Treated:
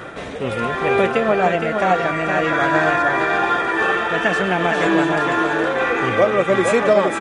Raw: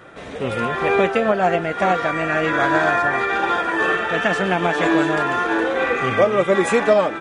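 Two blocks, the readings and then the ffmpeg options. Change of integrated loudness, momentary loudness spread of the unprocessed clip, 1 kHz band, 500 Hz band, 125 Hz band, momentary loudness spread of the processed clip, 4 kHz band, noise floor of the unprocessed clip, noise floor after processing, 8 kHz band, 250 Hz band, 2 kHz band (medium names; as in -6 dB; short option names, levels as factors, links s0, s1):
+1.0 dB, 3 LU, +1.0 dB, +1.0 dB, +1.5 dB, 3 LU, +1.0 dB, -33 dBFS, -29 dBFS, +1.0 dB, +1.0 dB, +1.0 dB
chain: -af "areverse,acompressor=mode=upward:threshold=0.1:ratio=2.5,areverse,aecho=1:1:465:0.531"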